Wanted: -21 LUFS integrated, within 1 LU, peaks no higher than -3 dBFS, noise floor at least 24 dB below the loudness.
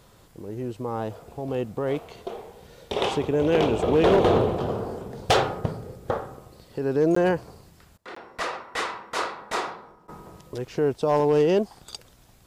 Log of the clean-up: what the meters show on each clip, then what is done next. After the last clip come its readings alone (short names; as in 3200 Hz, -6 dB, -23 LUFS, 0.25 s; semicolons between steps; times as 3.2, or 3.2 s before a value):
clipped 0.5%; flat tops at -13.0 dBFS; dropouts 2; longest dropout 14 ms; loudness -25.0 LUFS; peak -13.0 dBFS; loudness target -21.0 LUFS
-> clip repair -13 dBFS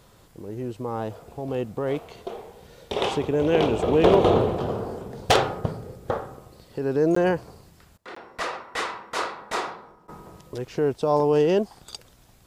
clipped 0.0%; dropouts 2; longest dropout 14 ms
-> interpolate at 7.15/8.15, 14 ms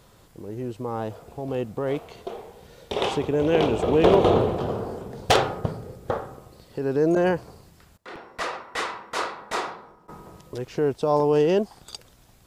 dropouts 0; loudness -24.5 LUFS; peak -4.0 dBFS; loudness target -21.0 LUFS
-> gain +3.5 dB; limiter -3 dBFS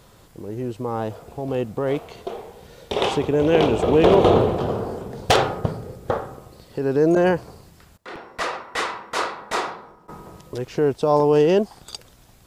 loudness -21.5 LUFS; peak -3.0 dBFS; noise floor -51 dBFS